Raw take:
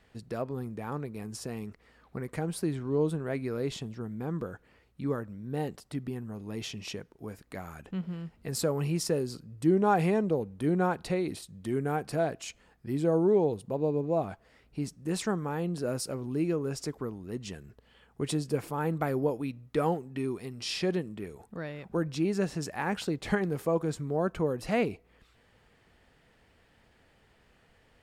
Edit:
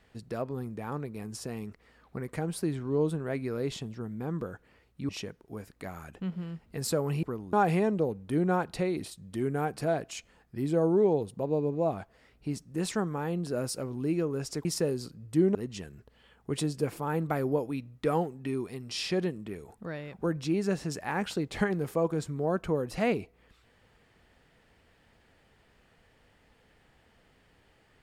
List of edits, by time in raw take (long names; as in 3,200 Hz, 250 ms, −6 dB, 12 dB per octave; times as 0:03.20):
0:05.09–0:06.80: remove
0:08.94–0:09.84: swap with 0:16.96–0:17.26